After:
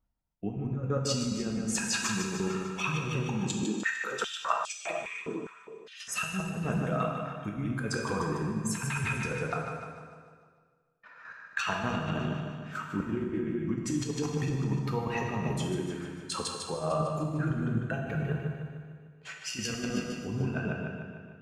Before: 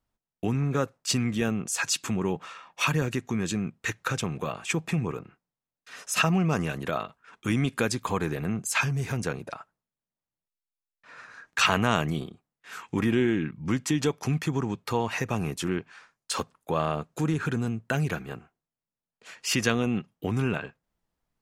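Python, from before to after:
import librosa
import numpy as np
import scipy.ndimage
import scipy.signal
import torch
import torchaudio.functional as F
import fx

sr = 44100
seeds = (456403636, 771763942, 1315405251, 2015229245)

y = fx.spec_expand(x, sr, power=1.5)
y = fx.chopper(y, sr, hz=4.0, depth_pct=65, duty_pct=30)
y = fx.echo_feedback(y, sr, ms=150, feedback_pct=55, wet_db=-7.5)
y = fx.over_compress(y, sr, threshold_db=-32.0, ratio=-0.5)
y = fx.rev_plate(y, sr, seeds[0], rt60_s=1.6, hf_ratio=0.9, predelay_ms=0, drr_db=1.0)
y = fx.filter_held_highpass(y, sr, hz=4.9, low_hz=300.0, high_hz=4600.0, at=(3.63, 6.08))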